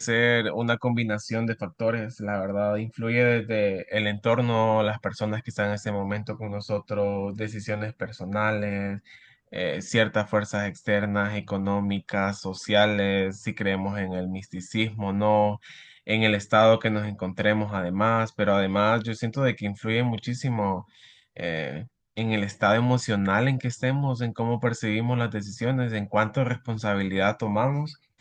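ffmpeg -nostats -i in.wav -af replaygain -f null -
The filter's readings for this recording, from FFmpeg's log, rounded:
track_gain = +5.6 dB
track_peak = 0.387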